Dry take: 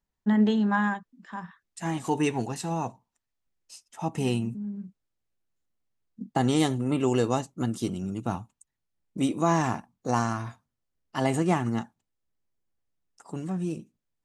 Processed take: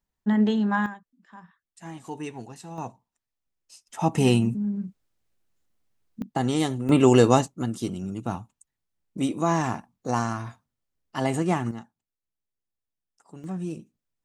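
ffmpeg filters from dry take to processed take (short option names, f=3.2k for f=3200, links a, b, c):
-af "asetnsamples=n=441:p=0,asendcmd='0.86 volume volume -9.5dB;2.78 volume volume -3dB;3.87 volume volume 7dB;6.22 volume volume -1dB;6.89 volume volume 8dB;7.48 volume volume 0dB;11.71 volume volume -9dB;13.44 volume volume -1.5dB',volume=0.5dB"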